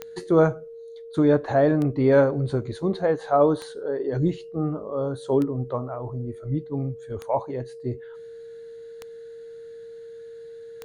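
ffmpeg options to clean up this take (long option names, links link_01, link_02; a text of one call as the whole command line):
ffmpeg -i in.wav -af "adeclick=threshold=4,bandreject=frequency=460:width=30" out.wav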